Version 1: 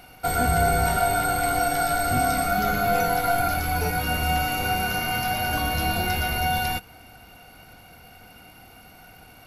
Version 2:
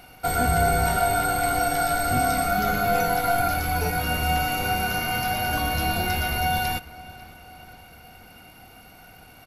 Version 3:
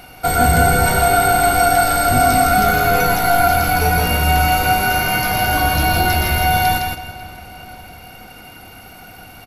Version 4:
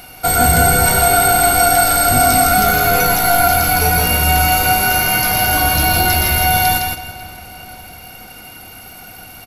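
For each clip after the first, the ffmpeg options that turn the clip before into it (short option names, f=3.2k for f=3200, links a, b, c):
-filter_complex "[0:a]asplit=2[a][b];[b]adelay=544,lowpass=f=4.4k:p=1,volume=-19.5dB,asplit=2[c][d];[d]adelay=544,lowpass=f=4.4k:p=1,volume=0.51,asplit=2[e][f];[f]adelay=544,lowpass=f=4.4k:p=1,volume=0.51,asplit=2[g][h];[h]adelay=544,lowpass=f=4.4k:p=1,volume=0.51[i];[a][c][e][g][i]amix=inputs=5:normalize=0"
-af "aecho=1:1:161|322|483:0.631|0.139|0.0305,acontrast=54,volume=1.5dB"
-af "highshelf=f=4.1k:g=8.5"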